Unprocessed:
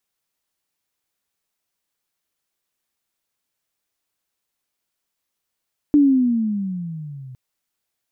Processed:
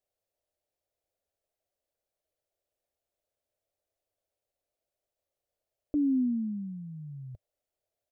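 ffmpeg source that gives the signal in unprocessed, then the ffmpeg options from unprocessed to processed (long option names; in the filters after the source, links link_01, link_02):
-f lavfi -i "aevalsrc='pow(10,(-9-25.5*t/1.41)/20)*sin(2*PI*298*1.41/(-15*log(2)/12)*(exp(-15*log(2)/12*t/1.41)-1))':duration=1.41:sample_rate=44100"
-af "firequalizer=gain_entry='entry(100,0);entry(170,-13);entry(600,8);entry(960,-13)':delay=0.05:min_phase=1,alimiter=limit=-22.5dB:level=0:latency=1"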